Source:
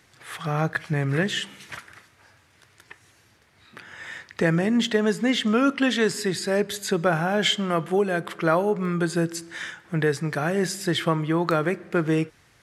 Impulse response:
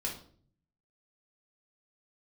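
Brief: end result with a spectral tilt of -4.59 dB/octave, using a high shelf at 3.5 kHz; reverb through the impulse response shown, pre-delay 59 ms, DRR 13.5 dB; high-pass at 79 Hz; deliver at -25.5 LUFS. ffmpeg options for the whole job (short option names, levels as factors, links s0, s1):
-filter_complex "[0:a]highpass=79,highshelf=f=3500:g=-3.5,asplit=2[s0][s1];[1:a]atrim=start_sample=2205,adelay=59[s2];[s1][s2]afir=irnorm=-1:irlink=0,volume=0.158[s3];[s0][s3]amix=inputs=2:normalize=0,volume=0.841"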